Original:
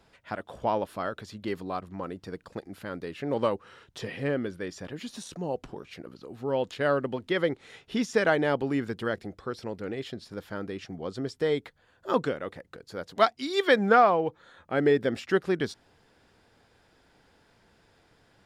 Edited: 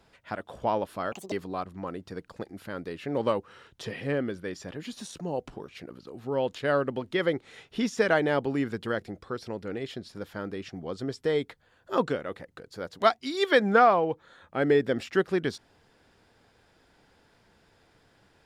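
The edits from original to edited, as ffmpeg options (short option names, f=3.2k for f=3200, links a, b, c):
-filter_complex "[0:a]asplit=3[a][b][c];[a]atrim=end=1.124[d];[b]atrim=start=1.12:end=1.48,asetpts=PTS-STARTPTS,asetrate=80262,aresample=44100,atrim=end_sample=8723,asetpts=PTS-STARTPTS[e];[c]atrim=start=1.476[f];[d][e]acrossfade=d=0.004:c1=hsin:c2=hsin[g];[g][f]acrossfade=d=0.004:c1=hsin:c2=hsin"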